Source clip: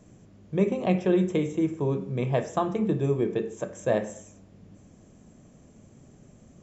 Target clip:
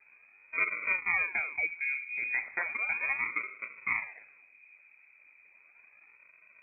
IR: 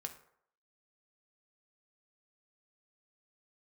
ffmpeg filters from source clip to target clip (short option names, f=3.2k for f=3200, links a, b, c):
-af "acrusher=samples=28:mix=1:aa=0.000001:lfo=1:lforange=44.8:lforate=0.35,lowpass=f=2.2k:t=q:w=0.5098,lowpass=f=2.2k:t=q:w=0.6013,lowpass=f=2.2k:t=q:w=0.9,lowpass=f=2.2k:t=q:w=2.563,afreqshift=-2600,volume=-7dB"